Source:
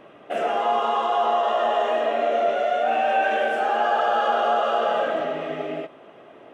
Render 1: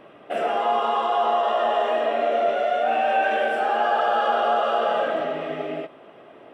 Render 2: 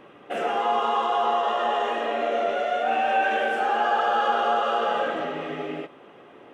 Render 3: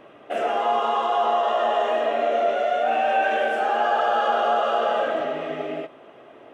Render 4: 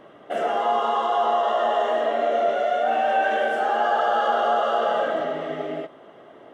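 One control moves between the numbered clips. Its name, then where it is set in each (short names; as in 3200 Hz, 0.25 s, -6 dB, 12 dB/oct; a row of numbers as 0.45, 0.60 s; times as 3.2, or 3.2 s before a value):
notch, frequency: 6500, 640, 180, 2500 Hz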